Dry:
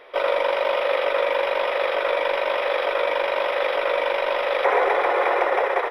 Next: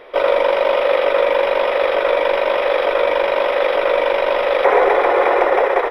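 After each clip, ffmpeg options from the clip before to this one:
-af "lowshelf=f=400:g=11,volume=3dB"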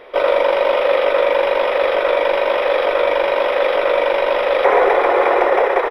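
-filter_complex "[0:a]asplit=2[a][b];[b]adelay=30,volume=-12dB[c];[a][c]amix=inputs=2:normalize=0"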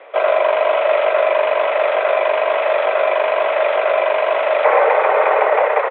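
-af "highpass=f=210:t=q:w=0.5412,highpass=f=210:t=q:w=1.307,lowpass=f=3.1k:t=q:w=0.5176,lowpass=f=3.1k:t=q:w=0.7071,lowpass=f=3.1k:t=q:w=1.932,afreqshift=65"

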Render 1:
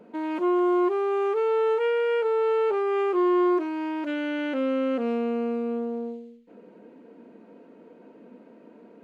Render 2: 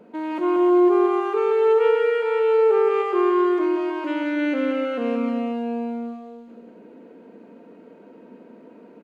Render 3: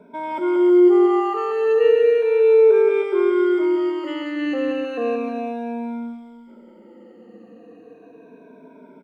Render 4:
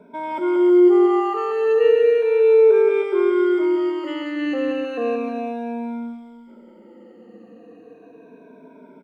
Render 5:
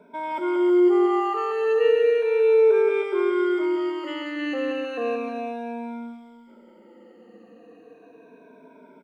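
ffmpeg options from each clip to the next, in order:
-af "aecho=1:1:180|315|416.2|492.2|549.1:0.631|0.398|0.251|0.158|0.1,volume=1.5dB"
-af "afftfilt=real='re*pow(10,21/40*sin(2*PI*(1.6*log(max(b,1)*sr/1024/100)/log(2)-(-0.34)*(pts-256)/sr)))':imag='im*pow(10,21/40*sin(2*PI*(1.6*log(max(b,1)*sr/1024/100)/log(2)-(-0.34)*(pts-256)/sr)))':win_size=1024:overlap=0.75,volume=-3.5dB"
-af anull
-af "lowshelf=f=460:g=-7.5"

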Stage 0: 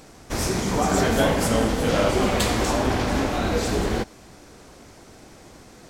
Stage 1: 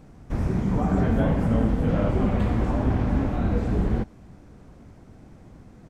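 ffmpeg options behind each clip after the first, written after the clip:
-filter_complex "[0:a]firequalizer=gain_entry='entry(170,0);entry(370,-10);entry(4400,-22)':delay=0.05:min_phase=1,acrossover=split=3000[a][b];[b]acompressor=threshold=-59dB:ratio=4:attack=1:release=60[c];[a][c]amix=inputs=2:normalize=0,volume=4dB"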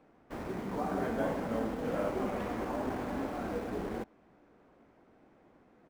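-filter_complex "[0:a]acrossover=split=270 3400:gain=0.1 1 0.178[a][b][c];[a][b][c]amix=inputs=3:normalize=0,asplit=2[d][e];[e]acrusher=bits=5:mix=0:aa=0.000001,volume=-10.5dB[f];[d][f]amix=inputs=2:normalize=0,volume=-7dB"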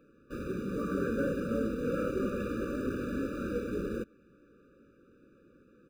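-af "afftfilt=real='re*eq(mod(floor(b*sr/1024/580),2),0)':imag='im*eq(mod(floor(b*sr/1024/580),2),0)':win_size=1024:overlap=0.75,volume=3dB"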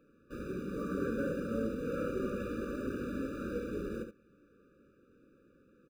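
-af "aecho=1:1:71:0.398,volume=-4dB"

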